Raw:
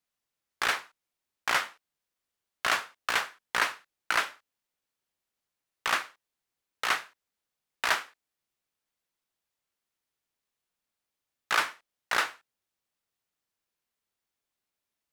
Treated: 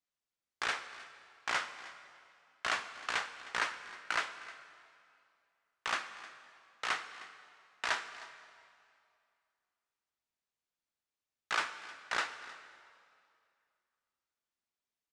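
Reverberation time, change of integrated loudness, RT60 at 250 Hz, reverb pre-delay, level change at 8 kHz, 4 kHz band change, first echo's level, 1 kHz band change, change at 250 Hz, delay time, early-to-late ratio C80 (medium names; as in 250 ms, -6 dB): 2.4 s, -7.5 dB, 2.4 s, 3 ms, -8.0 dB, -6.5 dB, -18.5 dB, -6.5 dB, -6.5 dB, 311 ms, 11.5 dB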